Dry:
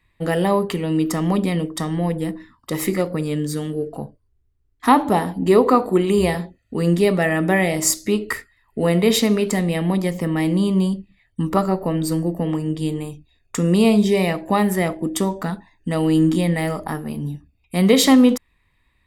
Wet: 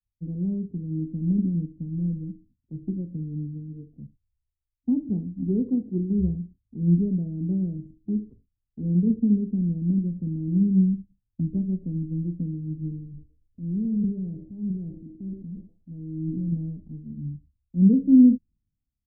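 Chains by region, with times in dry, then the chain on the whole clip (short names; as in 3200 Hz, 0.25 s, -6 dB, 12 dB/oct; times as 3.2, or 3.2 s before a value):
13.05–16.52 delay with a stepping band-pass 0.121 s, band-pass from 390 Hz, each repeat 0.7 oct, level -10 dB + compressor 1.5:1, threshold -25 dBFS + transient shaper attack -7 dB, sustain +9 dB
whole clip: Wiener smoothing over 25 samples; inverse Chebyshev low-pass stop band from 1500 Hz, stop band 80 dB; three-band expander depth 70%; gain -2.5 dB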